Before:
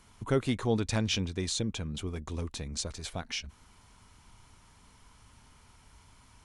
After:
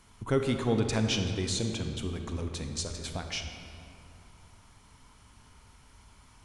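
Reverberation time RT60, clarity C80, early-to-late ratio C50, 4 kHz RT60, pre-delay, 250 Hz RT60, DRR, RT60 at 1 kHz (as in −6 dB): 2.8 s, 6.5 dB, 5.5 dB, 1.6 s, 30 ms, 3.2 s, 5.0 dB, 2.6 s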